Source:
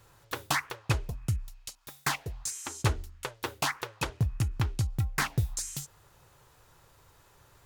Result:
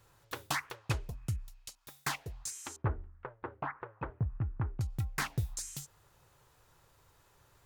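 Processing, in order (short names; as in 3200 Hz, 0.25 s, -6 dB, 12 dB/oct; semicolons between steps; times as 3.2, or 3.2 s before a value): 2.76–4.81 LPF 1600 Hz 24 dB/oct; gain -5.5 dB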